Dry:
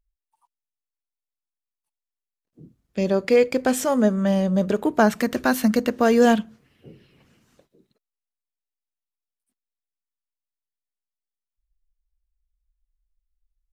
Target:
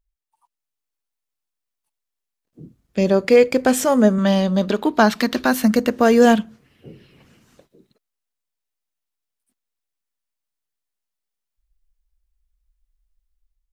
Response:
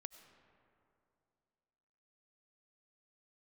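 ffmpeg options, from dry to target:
-filter_complex "[0:a]asettb=1/sr,asplit=3[s0][s1][s2];[s0]atrim=end=4.184[s3];[s1]atrim=start=4.18:end=5.46,asetpts=PTS-STARTPTS,afade=t=in:d=0.004:c=qsin,afade=t=out:st=1.276:d=0.004:c=qsin,equalizer=f=125:t=o:w=1:g=-9,equalizer=f=250:t=o:w=1:g=4,equalizer=f=500:t=o:w=1:g=-3,equalizer=f=1000:t=o:w=1:g=4,equalizer=f=4000:t=o:w=1:g=11,equalizer=f=8000:t=o:w=1:g=-4[s4];[s2]atrim=start=5.456[s5];[s3][s4]acrossfade=d=0.004:c1=hsin:c2=qsin[s6];[s6][s5]acrossfade=d=0.004:c1=qsin:c2=hsin,dynaudnorm=f=220:g=5:m=2"

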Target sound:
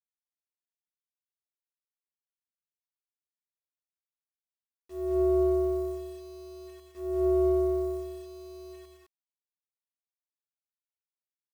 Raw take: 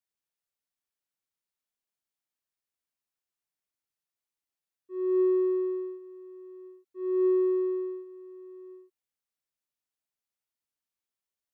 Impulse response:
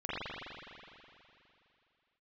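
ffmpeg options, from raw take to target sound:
-af "acrusher=bits=8:mix=0:aa=0.000001,tremolo=f=300:d=0.621,aecho=1:1:183|211:0.447|0.631"

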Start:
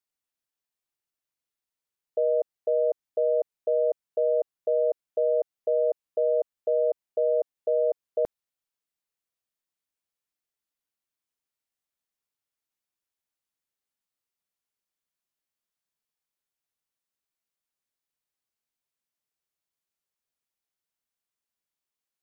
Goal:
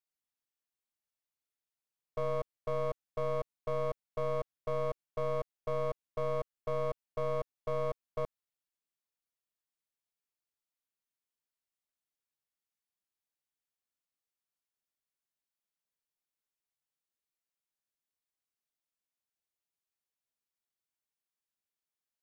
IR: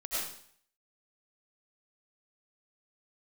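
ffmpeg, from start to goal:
-af "aeval=exprs='clip(val(0),-1,0.0106)':c=same,volume=0.501"

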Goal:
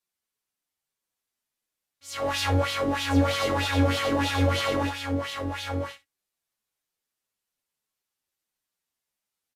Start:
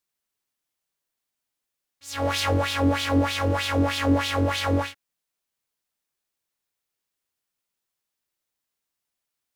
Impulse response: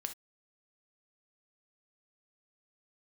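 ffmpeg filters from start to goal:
-filter_complex "[0:a]aecho=1:1:1029:0.531,asplit=2[s0][s1];[1:a]atrim=start_sample=2205[s2];[s1][s2]afir=irnorm=-1:irlink=0,volume=1.78[s3];[s0][s3]amix=inputs=2:normalize=0,aresample=32000,aresample=44100,asplit=2[s4][s5];[s5]adelay=8,afreqshift=-1.6[s6];[s4][s6]amix=inputs=2:normalize=1,volume=0.447"

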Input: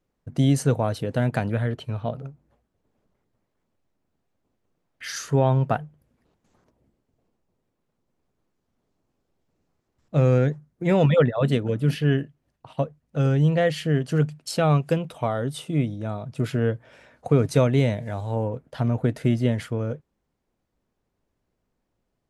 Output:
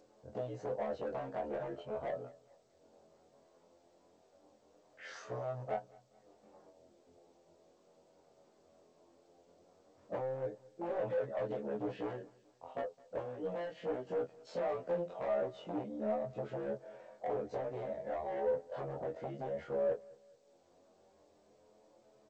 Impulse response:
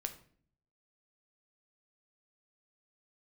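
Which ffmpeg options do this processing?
-filter_complex "[0:a]afftfilt=real='re':imag='-im':win_size=2048:overlap=0.75,acompressor=threshold=0.0282:ratio=12,aeval=exprs='0.0299*(abs(mod(val(0)/0.0299+3,4)-2)-1)':c=same,bandpass=f=580:t=q:w=2:csg=0,acompressor=mode=upward:threshold=0.00112:ratio=2.5,asoftclip=type=tanh:threshold=0.015,flanger=delay=9.3:depth=3.3:regen=17:speed=0.18:shape=sinusoidal,asplit=2[s0][s1];[s1]adelay=14,volume=0.266[s2];[s0][s2]amix=inputs=2:normalize=0,aecho=1:1:213|426|639:0.0668|0.0294|0.0129,volume=3.35" -ar 16000 -c:a g722

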